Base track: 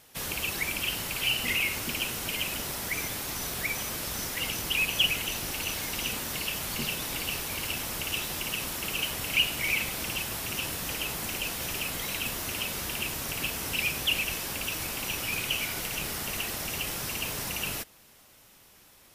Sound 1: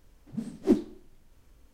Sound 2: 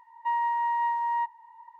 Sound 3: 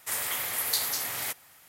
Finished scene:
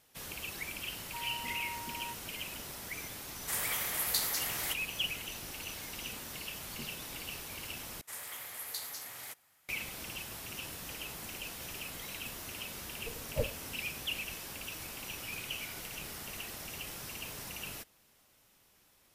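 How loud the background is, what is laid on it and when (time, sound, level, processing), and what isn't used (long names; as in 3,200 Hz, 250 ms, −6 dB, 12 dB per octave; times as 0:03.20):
base track −10 dB
0:00.88: mix in 2 −17.5 dB
0:03.41: mix in 3 −4 dB
0:08.01: overwrite with 3 −12.5 dB + downsampling to 32,000 Hz
0:12.69: mix in 1 −7.5 dB + ring modulation 240 Hz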